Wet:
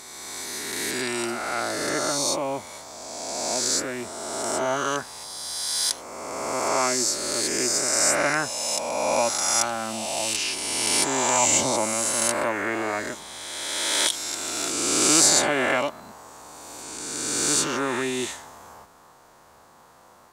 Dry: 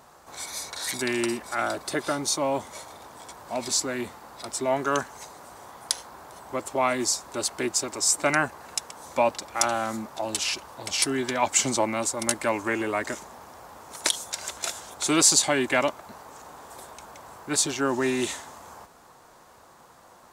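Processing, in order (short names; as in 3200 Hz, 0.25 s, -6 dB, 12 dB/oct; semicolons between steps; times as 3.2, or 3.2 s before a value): spectral swells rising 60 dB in 2.31 s; gain -3.5 dB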